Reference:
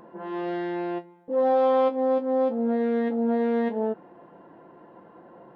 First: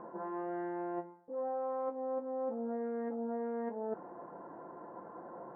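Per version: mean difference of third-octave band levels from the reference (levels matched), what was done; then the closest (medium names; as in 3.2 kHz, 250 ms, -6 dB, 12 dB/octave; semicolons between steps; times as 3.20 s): 4.5 dB: low-pass 1.4 kHz 24 dB/octave; bass shelf 420 Hz -9.5 dB; reverse; compression 6:1, threshold -41 dBFS, peak gain reduction 18 dB; reverse; trim +5 dB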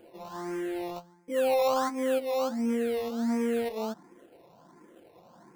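7.5 dB: dynamic bell 1.1 kHz, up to +6 dB, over -42 dBFS, Q 3; in parallel at -4 dB: decimation with a swept rate 22×, swing 60% 1.4 Hz; on the sum: barber-pole phaser +1.4 Hz; trim -6 dB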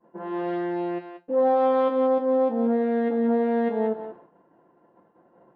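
2.5 dB: treble shelf 3.2 kHz -10 dB; on a send: thinning echo 183 ms, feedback 21%, high-pass 830 Hz, level -5 dB; on the sum: expander -40 dBFS; trim +2 dB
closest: third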